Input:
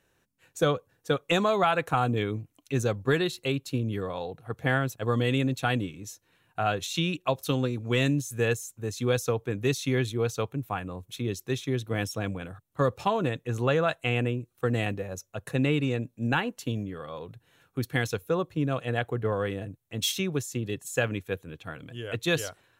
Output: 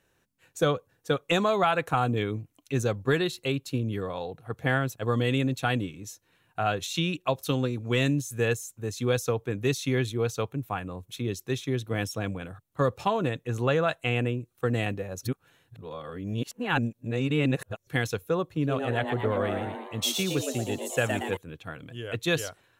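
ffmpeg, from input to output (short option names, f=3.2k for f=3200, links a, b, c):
-filter_complex "[0:a]asettb=1/sr,asplit=3[a][b][c];[a]atrim=end=18.444[d];[b]atrim=start=18.44:end=21.37,asetpts=PTS-STARTPTS,afade=t=in:d=0.004:c=qsin,afade=t=out:st=2.926:d=0.004:c=qsin,asplit=8[e][f][g][h][i][j][k][l];[f]adelay=116,afreqshift=130,volume=-5.5dB[m];[g]adelay=232,afreqshift=260,volume=-10.9dB[n];[h]adelay=348,afreqshift=390,volume=-16.2dB[o];[i]adelay=464,afreqshift=520,volume=-21.6dB[p];[j]adelay=580,afreqshift=650,volume=-26.9dB[q];[k]adelay=696,afreqshift=780,volume=-32.3dB[r];[l]adelay=812,afreqshift=910,volume=-37.6dB[s];[e][m][n][o][p][q][r][s]amix=inputs=8:normalize=0,atrim=end_sample=129213[t];[c]atrim=start=21.366[u];[d][t]acrossfade=d=0.004:c1=hsin:c2=qsin[v];[v][u]acrossfade=d=0.004:c1=qsin:c2=hsin,asplit=3[w][x][y];[w]atrim=end=15.232[z];[x]atrim=start=15.228:end=17.872,asetpts=PTS-STARTPTS,areverse[aa];[y]atrim=start=17.868[ab];[z][aa]acrossfade=d=0.004:c1=hsin:c2=hsin[ac];[ac][ab]acrossfade=d=0.004:c1=hsin:c2=hsin"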